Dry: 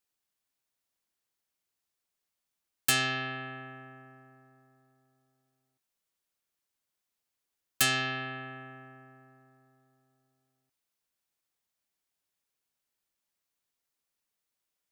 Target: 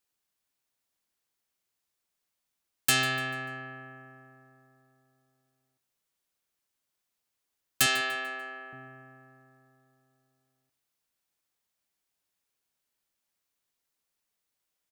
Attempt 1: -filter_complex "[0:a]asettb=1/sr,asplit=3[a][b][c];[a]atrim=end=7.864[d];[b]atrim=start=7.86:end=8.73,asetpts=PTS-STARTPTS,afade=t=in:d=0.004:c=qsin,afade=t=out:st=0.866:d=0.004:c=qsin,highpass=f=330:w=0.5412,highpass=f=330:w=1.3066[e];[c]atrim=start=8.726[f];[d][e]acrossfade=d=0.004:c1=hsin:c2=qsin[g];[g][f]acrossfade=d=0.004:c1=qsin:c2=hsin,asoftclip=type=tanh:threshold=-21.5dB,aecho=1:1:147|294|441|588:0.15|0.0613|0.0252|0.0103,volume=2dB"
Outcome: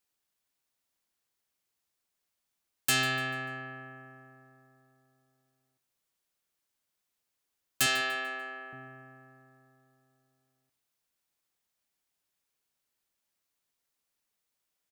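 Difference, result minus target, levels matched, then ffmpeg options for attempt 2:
soft clip: distortion +15 dB
-filter_complex "[0:a]asettb=1/sr,asplit=3[a][b][c];[a]atrim=end=7.864[d];[b]atrim=start=7.86:end=8.73,asetpts=PTS-STARTPTS,afade=t=in:d=0.004:c=qsin,afade=t=out:st=0.866:d=0.004:c=qsin,highpass=f=330:w=0.5412,highpass=f=330:w=1.3066[e];[c]atrim=start=8.726[f];[d][e]acrossfade=d=0.004:c1=hsin:c2=qsin[g];[g][f]acrossfade=d=0.004:c1=qsin:c2=hsin,asoftclip=type=tanh:threshold=-11dB,aecho=1:1:147|294|441|588:0.15|0.0613|0.0252|0.0103,volume=2dB"

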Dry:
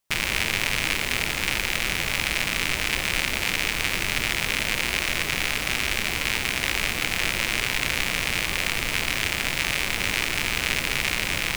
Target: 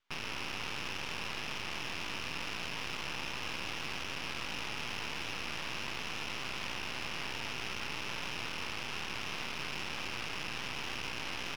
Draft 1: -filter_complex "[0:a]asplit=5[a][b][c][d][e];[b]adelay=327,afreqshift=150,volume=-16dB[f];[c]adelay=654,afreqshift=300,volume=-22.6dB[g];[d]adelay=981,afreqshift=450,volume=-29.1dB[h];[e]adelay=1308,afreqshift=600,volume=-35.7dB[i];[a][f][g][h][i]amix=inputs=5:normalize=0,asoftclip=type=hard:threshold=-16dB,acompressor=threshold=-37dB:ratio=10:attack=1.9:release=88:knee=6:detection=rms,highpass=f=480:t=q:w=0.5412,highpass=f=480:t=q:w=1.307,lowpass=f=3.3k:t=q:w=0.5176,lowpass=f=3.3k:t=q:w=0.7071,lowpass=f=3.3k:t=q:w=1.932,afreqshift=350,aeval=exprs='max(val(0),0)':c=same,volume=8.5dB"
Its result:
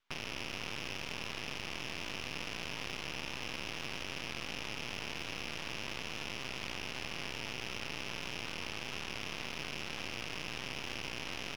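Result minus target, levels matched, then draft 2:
hard clip: distortion -7 dB
-filter_complex "[0:a]asplit=5[a][b][c][d][e];[b]adelay=327,afreqshift=150,volume=-16dB[f];[c]adelay=654,afreqshift=300,volume=-22.6dB[g];[d]adelay=981,afreqshift=450,volume=-29.1dB[h];[e]adelay=1308,afreqshift=600,volume=-35.7dB[i];[a][f][g][h][i]amix=inputs=5:normalize=0,asoftclip=type=hard:threshold=-25dB,acompressor=threshold=-37dB:ratio=10:attack=1.9:release=88:knee=6:detection=rms,highpass=f=480:t=q:w=0.5412,highpass=f=480:t=q:w=1.307,lowpass=f=3.3k:t=q:w=0.5176,lowpass=f=3.3k:t=q:w=0.7071,lowpass=f=3.3k:t=q:w=1.932,afreqshift=350,aeval=exprs='max(val(0),0)':c=same,volume=8.5dB"

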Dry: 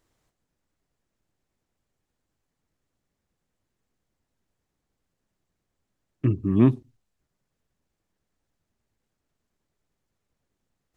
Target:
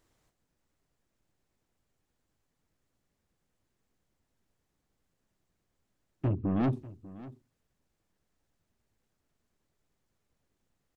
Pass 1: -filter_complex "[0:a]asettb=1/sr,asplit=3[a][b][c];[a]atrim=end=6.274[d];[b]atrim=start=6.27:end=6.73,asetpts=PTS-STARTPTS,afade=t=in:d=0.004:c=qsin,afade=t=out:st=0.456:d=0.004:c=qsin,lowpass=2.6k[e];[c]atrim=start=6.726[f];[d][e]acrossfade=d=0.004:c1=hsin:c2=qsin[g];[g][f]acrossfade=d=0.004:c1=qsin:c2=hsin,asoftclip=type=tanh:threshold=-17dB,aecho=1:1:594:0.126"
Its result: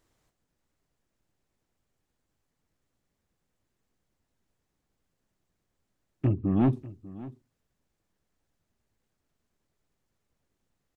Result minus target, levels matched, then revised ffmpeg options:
soft clip: distortion -5 dB
-filter_complex "[0:a]asettb=1/sr,asplit=3[a][b][c];[a]atrim=end=6.274[d];[b]atrim=start=6.27:end=6.73,asetpts=PTS-STARTPTS,afade=t=in:d=0.004:c=qsin,afade=t=out:st=0.456:d=0.004:c=qsin,lowpass=2.6k[e];[c]atrim=start=6.726[f];[d][e]acrossfade=d=0.004:c1=hsin:c2=qsin[g];[g][f]acrossfade=d=0.004:c1=qsin:c2=hsin,asoftclip=type=tanh:threshold=-24dB,aecho=1:1:594:0.126"

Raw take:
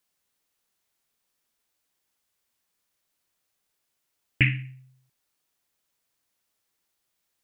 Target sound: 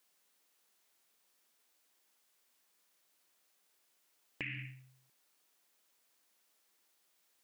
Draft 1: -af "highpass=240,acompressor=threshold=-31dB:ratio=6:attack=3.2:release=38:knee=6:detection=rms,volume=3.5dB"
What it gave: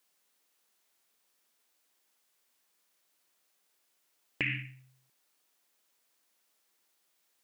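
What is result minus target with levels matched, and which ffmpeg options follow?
compressor: peak gain reduction -9.5 dB
-af "highpass=240,acompressor=threshold=-42.5dB:ratio=6:attack=3.2:release=38:knee=6:detection=rms,volume=3.5dB"

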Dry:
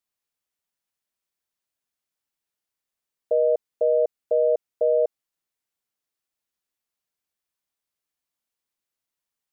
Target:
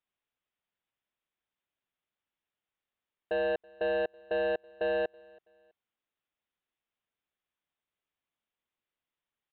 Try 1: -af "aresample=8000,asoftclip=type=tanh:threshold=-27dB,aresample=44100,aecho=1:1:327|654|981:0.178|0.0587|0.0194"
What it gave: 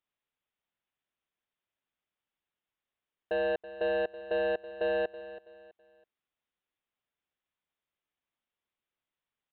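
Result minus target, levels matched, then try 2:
echo-to-direct +11 dB
-af "aresample=8000,asoftclip=type=tanh:threshold=-27dB,aresample=44100,aecho=1:1:327|654:0.0501|0.0165"

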